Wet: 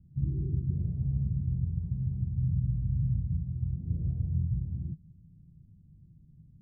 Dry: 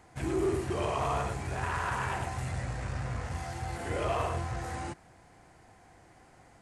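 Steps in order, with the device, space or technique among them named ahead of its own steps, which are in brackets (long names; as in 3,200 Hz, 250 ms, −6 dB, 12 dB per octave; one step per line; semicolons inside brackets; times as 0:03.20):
the neighbour's flat through the wall (low-pass filter 180 Hz 24 dB per octave; parametric band 160 Hz +8 dB 0.6 octaves)
level +5 dB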